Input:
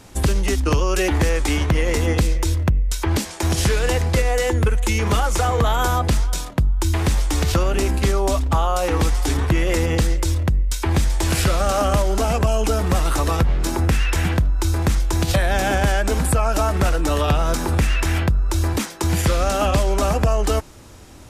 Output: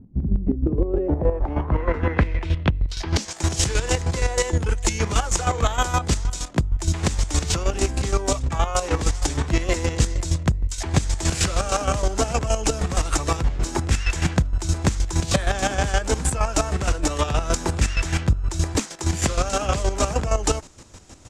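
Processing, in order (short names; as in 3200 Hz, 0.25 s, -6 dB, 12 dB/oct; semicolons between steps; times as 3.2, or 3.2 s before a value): harmoniser -5 st -16 dB, +12 st -12 dB; low-pass sweep 210 Hz -> 7300 Hz, 0.34–3.35; chopper 6.4 Hz, depth 65%, duty 30%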